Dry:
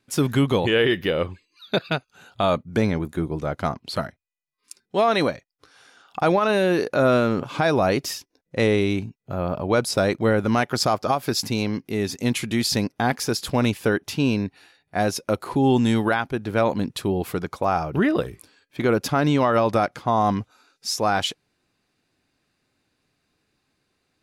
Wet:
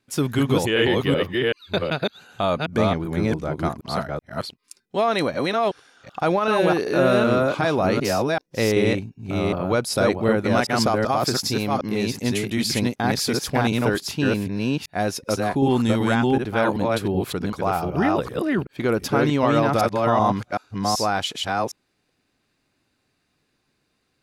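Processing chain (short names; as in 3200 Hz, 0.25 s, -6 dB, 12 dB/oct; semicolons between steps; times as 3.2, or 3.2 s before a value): reverse delay 0.381 s, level -1 dB; gain -1.5 dB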